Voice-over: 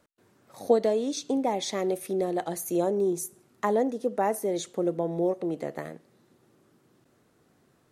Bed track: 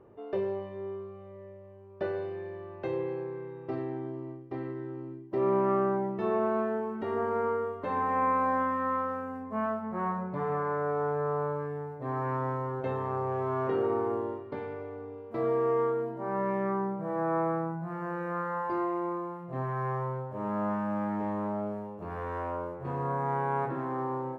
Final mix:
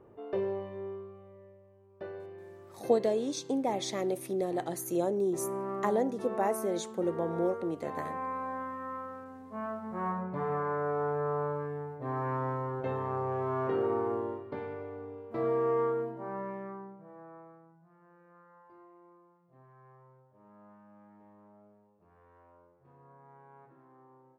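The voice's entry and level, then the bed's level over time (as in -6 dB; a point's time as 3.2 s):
2.20 s, -4.0 dB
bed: 0.76 s -1 dB
1.68 s -9.5 dB
9.37 s -9.5 dB
10.12 s -1.5 dB
16.01 s -1.5 dB
17.6 s -26 dB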